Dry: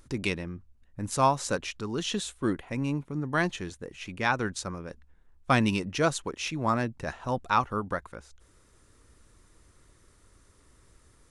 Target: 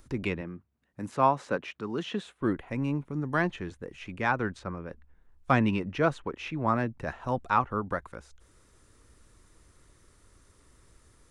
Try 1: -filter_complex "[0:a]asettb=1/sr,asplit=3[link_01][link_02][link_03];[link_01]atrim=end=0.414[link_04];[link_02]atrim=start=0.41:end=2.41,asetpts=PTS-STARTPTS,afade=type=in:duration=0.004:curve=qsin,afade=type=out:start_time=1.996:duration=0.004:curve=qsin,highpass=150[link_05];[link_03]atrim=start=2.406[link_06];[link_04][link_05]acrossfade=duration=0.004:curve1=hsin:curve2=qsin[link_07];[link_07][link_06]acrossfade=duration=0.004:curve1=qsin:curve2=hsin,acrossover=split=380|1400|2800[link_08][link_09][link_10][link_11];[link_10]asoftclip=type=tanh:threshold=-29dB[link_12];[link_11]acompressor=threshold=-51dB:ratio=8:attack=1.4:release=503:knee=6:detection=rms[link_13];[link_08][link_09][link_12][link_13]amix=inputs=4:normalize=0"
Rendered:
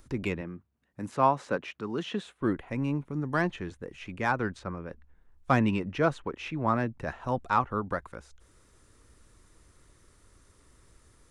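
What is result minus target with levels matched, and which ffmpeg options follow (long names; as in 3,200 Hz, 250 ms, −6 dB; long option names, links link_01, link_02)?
soft clipping: distortion +10 dB
-filter_complex "[0:a]asettb=1/sr,asplit=3[link_01][link_02][link_03];[link_01]atrim=end=0.414[link_04];[link_02]atrim=start=0.41:end=2.41,asetpts=PTS-STARTPTS,afade=type=in:duration=0.004:curve=qsin,afade=type=out:start_time=1.996:duration=0.004:curve=qsin,highpass=150[link_05];[link_03]atrim=start=2.406[link_06];[link_04][link_05]acrossfade=duration=0.004:curve1=hsin:curve2=qsin[link_07];[link_07][link_06]acrossfade=duration=0.004:curve1=qsin:curve2=hsin,acrossover=split=380|1400|2800[link_08][link_09][link_10][link_11];[link_10]asoftclip=type=tanh:threshold=-21.5dB[link_12];[link_11]acompressor=threshold=-51dB:ratio=8:attack=1.4:release=503:knee=6:detection=rms[link_13];[link_08][link_09][link_12][link_13]amix=inputs=4:normalize=0"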